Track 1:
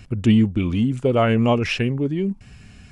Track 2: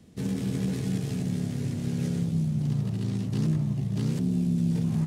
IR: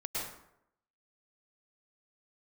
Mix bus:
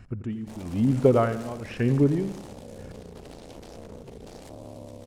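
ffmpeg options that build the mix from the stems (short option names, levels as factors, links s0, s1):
-filter_complex "[0:a]highshelf=f=2100:t=q:w=1.5:g=-8,aeval=exprs='val(0)*pow(10,-21*(0.5-0.5*cos(2*PI*1*n/s))/20)':c=same,volume=0.596,asplit=2[s0][s1];[s1]volume=0.211[s2];[1:a]lowshelf=f=150:g=-7,alimiter=level_in=2:limit=0.0631:level=0:latency=1:release=116,volume=0.501,aeval=exprs='0.0708*(cos(1*acos(clip(val(0)/0.0708,-1,1)))-cos(1*PI/2))+0.0224*(cos(7*acos(clip(val(0)/0.0708,-1,1)))-cos(7*PI/2))':c=same,adelay=300,volume=0.355[s3];[s2]aecho=0:1:86|172|258|344|430|516|602|688:1|0.53|0.281|0.149|0.0789|0.0418|0.0222|0.0117[s4];[s0][s3][s4]amix=inputs=3:normalize=0,dynaudnorm=f=130:g=7:m=2.24"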